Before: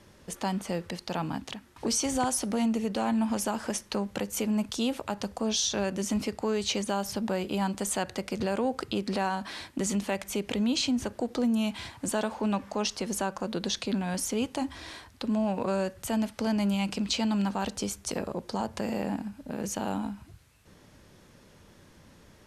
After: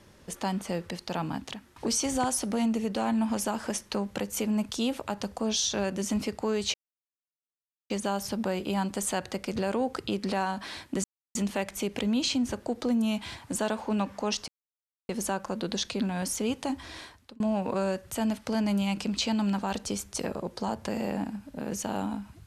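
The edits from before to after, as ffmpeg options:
-filter_complex "[0:a]asplit=5[s0][s1][s2][s3][s4];[s0]atrim=end=6.74,asetpts=PTS-STARTPTS,afade=t=out:st=6.736:d=0.004:c=hsin,apad=pad_dur=1.16[s5];[s1]atrim=start=6.74:end=9.88,asetpts=PTS-STARTPTS,afade=t=in:d=0.004:c=hsin,afade=t=out:st=3.136:d=0.004:c=hsin,apad=pad_dur=0.31[s6];[s2]atrim=start=9.88:end=13.01,asetpts=PTS-STARTPTS,afade=t=in:d=0.004:c=hsin,afade=t=out:st=3.126:d=0.004:c=hsin,apad=pad_dur=0.61[s7];[s3]atrim=start=13.01:end=15.32,asetpts=PTS-STARTPTS,afade=t=in:d=0.004:c=hsin,afade=t=out:st=1.91:d=0.4[s8];[s4]atrim=start=15.32,asetpts=PTS-STARTPTS,afade=t=in:d=0.004:c=hsin[s9];[s5][s6][s7][s8][s9]concat=n=5:v=0:a=1"

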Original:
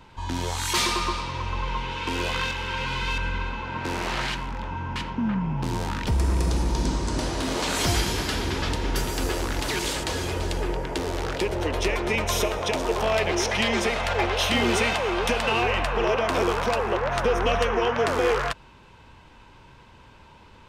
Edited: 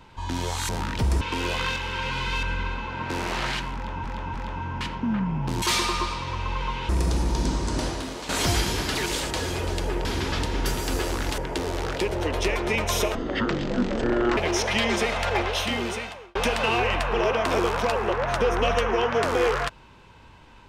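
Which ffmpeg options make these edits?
-filter_complex "[0:a]asplit=14[s0][s1][s2][s3][s4][s5][s6][s7][s8][s9][s10][s11][s12][s13];[s0]atrim=end=0.692[s14];[s1]atrim=start=5.768:end=6.292[s15];[s2]atrim=start=1.958:end=4.792[s16];[s3]atrim=start=4.488:end=4.792[s17];[s4]atrim=start=4.488:end=5.772[s18];[s5]atrim=start=0.688:end=1.962[s19];[s6]atrim=start=6.288:end=7.69,asetpts=PTS-STARTPTS,afade=t=out:st=0.982:d=0.42:c=qua:silence=0.316228[s20];[s7]atrim=start=7.69:end=8.352,asetpts=PTS-STARTPTS,afade=t=in:d=0.004:c=hsin:silence=0.316228[s21];[s8]atrim=start=9.678:end=10.782[s22];[s9]atrim=start=8.348:end=9.682[s23];[s10]atrim=start=10.778:end=12.554[s24];[s11]atrim=start=12.55:end=13.21,asetpts=PTS-STARTPTS,asetrate=23814,aresample=44100[s25];[s12]atrim=start=13.206:end=15.19,asetpts=PTS-STARTPTS,afade=t=out:st=0.944:d=1.04[s26];[s13]atrim=start=15.19,asetpts=PTS-STARTPTS,afade=t=in:d=0.004:c=hsin[s27];[s14][s15]acrossfade=d=0.004:c1=hsin:c2=hsin[s28];[s28][s16]acrossfade=d=0.004:c1=hsin:c2=hsin[s29];[s29][s17]acrossfade=d=0.004:c1=hsin:c2=hsin[s30];[s30][s18]acrossfade=d=0.004:c1=hsin:c2=hsin[s31];[s31][s19]acrossfade=d=0.004:c1=hsin:c2=hsin[s32];[s20][s21]concat=n=2:v=0:a=1[s33];[s32][s33]acrossfade=d=0.004:c1=hsin:c2=hsin[s34];[s34][s22]acrossfade=d=0.004:c1=hsin:c2=hsin[s35];[s35][s23]acrossfade=d=0.004:c1=hsin:c2=hsin[s36];[s36][s24]acrossfade=d=0.004:c1=hsin:c2=hsin[s37];[s37][s25]acrossfade=d=0.004:c1=hsin:c2=hsin[s38];[s26][s27]concat=n=2:v=0:a=1[s39];[s38][s39]acrossfade=d=0.004:c1=hsin:c2=hsin"

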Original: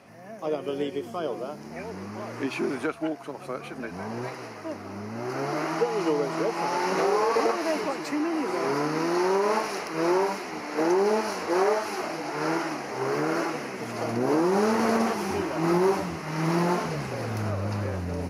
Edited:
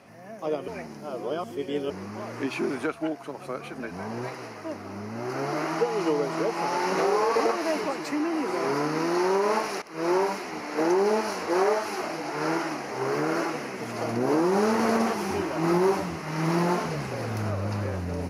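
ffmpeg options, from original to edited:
-filter_complex "[0:a]asplit=4[s0][s1][s2][s3];[s0]atrim=end=0.682[s4];[s1]atrim=start=0.678:end=1.902,asetpts=PTS-STARTPTS,areverse[s5];[s2]atrim=start=1.898:end=9.82,asetpts=PTS-STARTPTS,afade=t=out:st=7.918:d=0.004:c=hsin:silence=0.112202[s6];[s3]atrim=start=9.82,asetpts=PTS-STARTPTS,afade=t=in:d=0.32:silence=0.112202[s7];[s4][s5]acrossfade=d=0.004:c1=hsin:c2=hsin[s8];[s6][s7]concat=n=2:v=0:a=1[s9];[s8][s9]acrossfade=d=0.004:c1=hsin:c2=hsin"

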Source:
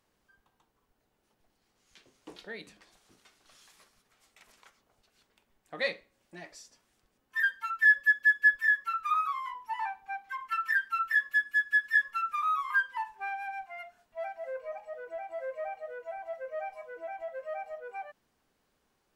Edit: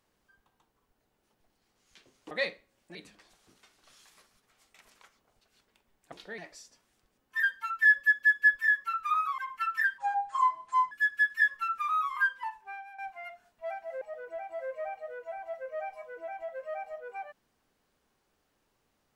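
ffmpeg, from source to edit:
-filter_complex "[0:a]asplit=10[s0][s1][s2][s3][s4][s5][s6][s7][s8][s9];[s0]atrim=end=2.312[s10];[s1]atrim=start=5.738:end=6.382[s11];[s2]atrim=start=2.568:end=5.742[s12];[s3]atrim=start=2.308:end=2.572[s13];[s4]atrim=start=6.378:end=9.382[s14];[s5]atrim=start=10.288:end=10.894[s15];[s6]atrim=start=10.89:end=11.45,asetpts=PTS-STARTPTS,asetrate=26460,aresample=44100[s16];[s7]atrim=start=11.446:end=13.52,asetpts=PTS-STARTPTS,afade=t=out:st=1.364:d=0.71:silence=0.211349[s17];[s8]atrim=start=13.52:end=14.552,asetpts=PTS-STARTPTS,afade=t=in:d=0.004:c=hsin:silence=0.211349[s18];[s9]atrim=start=14.808[s19];[s10][s11]acrossfade=d=0.004:c1=hsin:c2=hsin[s20];[s20][s12]acrossfade=d=0.004:c1=hsin:c2=hsin[s21];[s21][s13]acrossfade=d=0.004:c1=hsin:c2=hsin[s22];[s22][s14]acrossfade=d=0.004:c1=hsin:c2=hsin[s23];[s23][s15]acrossfade=d=0.004:c1=hsin:c2=hsin[s24];[s24][s16]acrossfade=d=0.004:c1=hsin:c2=hsin[s25];[s17][s18]concat=n=2:v=0:a=1[s26];[s25][s26]acrossfade=d=0.004:c1=hsin:c2=hsin[s27];[s27][s19]acrossfade=d=0.004:c1=hsin:c2=hsin"

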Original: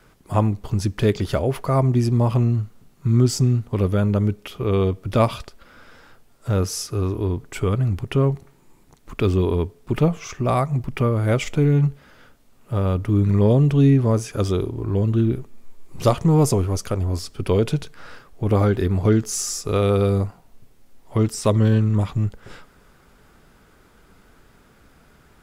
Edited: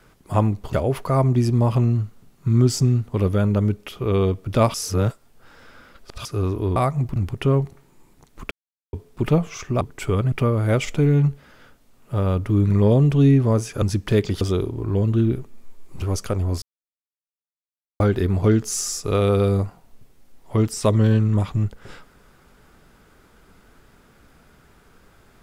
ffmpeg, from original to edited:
-filter_complex "[0:a]asplit=15[s0][s1][s2][s3][s4][s5][s6][s7][s8][s9][s10][s11][s12][s13][s14];[s0]atrim=end=0.732[s15];[s1]atrim=start=1.318:end=5.332[s16];[s2]atrim=start=5.328:end=6.842,asetpts=PTS-STARTPTS,areverse[s17];[s3]atrim=start=6.838:end=7.352[s18];[s4]atrim=start=10.508:end=10.912[s19];[s5]atrim=start=7.858:end=9.21,asetpts=PTS-STARTPTS,afade=t=out:st=1.348:d=0.004:c=hsin[s20];[s6]atrim=start=9.21:end=9.63,asetpts=PTS-STARTPTS,volume=0[s21];[s7]atrim=start=9.63:end=10.512,asetpts=PTS-STARTPTS,afade=t=in:d=0.004:c=hsin[s22];[s8]atrim=start=7.348:end=7.862[s23];[s9]atrim=start=10.908:end=14.412[s24];[s10]atrim=start=0.728:end=1.322[s25];[s11]atrim=start=14.408:end=16.022[s26];[s12]atrim=start=16.628:end=17.23,asetpts=PTS-STARTPTS,afade=t=out:st=0.598:d=0.004:c=hsin[s27];[s13]atrim=start=17.23:end=18.61,asetpts=PTS-STARTPTS,volume=0[s28];[s14]atrim=start=18.61,asetpts=PTS-STARTPTS,afade=t=in:d=0.004:c=hsin[s29];[s15][s16]acrossfade=d=0.004:c1=hsin:c2=hsin[s30];[s30][s17]acrossfade=d=0.004:c1=hsin:c2=hsin[s31];[s31][s18]acrossfade=d=0.004:c1=hsin:c2=hsin[s32];[s32][s19]acrossfade=d=0.004:c1=hsin:c2=hsin[s33];[s20][s21][s22]concat=n=3:v=0:a=1[s34];[s33][s34]acrossfade=d=0.004:c1=hsin:c2=hsin[s35];[s35][s23]acrossfade=d=0.004:c1=hsin:c2=hsin[s36];[s36][s24]acrossfade=d=0.004:c1=hsin:c2=hsin[s37];[s37][s25]acrossfade=d=0.004:c1=hsin:c2=hsin[s38];[s38][s26]acrossfade=d=0.004:c1=hsin:c2=hsin[s39];[s27][s28][s29]concat=n=3:v=0:a=1[s40];[s39][s40]acrossfade=d=0.004:c1=hsin:c2=hsin"

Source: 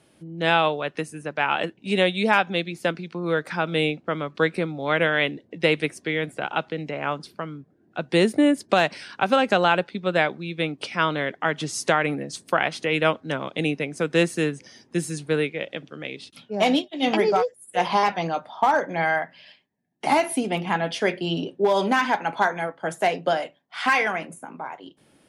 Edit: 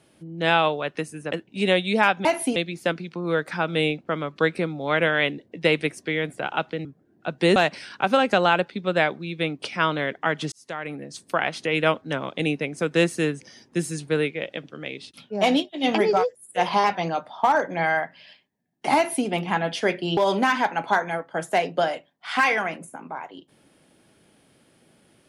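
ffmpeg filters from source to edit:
-filter_complex "[0:a]asplit=8[s0][s1][s2][s3][s4][s5][s6][s7];[s0]atrim=end=1.322[s8];[s1]atrim=start=1.618:end=2.552[s9];[s2]atrim=start=20.148:end=20.462[s10];[s3]atrim=start=2.548:end=6.842[s11];[s4]atrim=start=7.558:end=8.272[s12];[s5]atrim=start=8.748:end=11.71,asetpts=PTS-STARTPTS,afade=t=out:st=2.958:d=0.004:c=hsin[s13];[s6]atrim=start=11.71:end=21.362,asetpts=PTS-STARTPTS,afade=t=in:d=1.48:c=qsin[s14];[s7]atrim=start=21.658[s15];[s8][s9]acrossfade=d=0.004:c1=hsin:c2=hsin[s16];[s16][s10]acrossfade=d=0.004:c1=hsin:c2=hsin[s17];[s17][s11]acrossfade=d=0.004:c1=hsin:c2=hsin[s18];[s18][s12]acrossfade=d=0.004:c1=hsin:c2=hsin[s19];[s13][s14]concat=n=2:v=0:a=1[s20];[s19][s20]acrossfade=d=0.004:c1=hsin:c2=hsin[s21];[s21][s15]acrossfade=d=0.004:c1=hsin:c2=hsin"

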